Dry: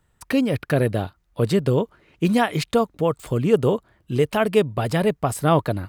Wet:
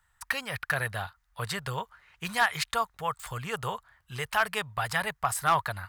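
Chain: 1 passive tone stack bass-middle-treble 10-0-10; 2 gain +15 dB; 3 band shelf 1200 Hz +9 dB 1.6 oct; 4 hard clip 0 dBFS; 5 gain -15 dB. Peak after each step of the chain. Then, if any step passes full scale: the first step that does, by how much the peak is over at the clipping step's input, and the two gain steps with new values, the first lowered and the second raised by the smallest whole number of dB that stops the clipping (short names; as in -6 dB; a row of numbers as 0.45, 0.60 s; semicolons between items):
-14.5, +0.5, +6.5, 0.0, -15.0 dBFS; step 2, 6.5 dB; step 2 +8 dB, step 5 -8 dB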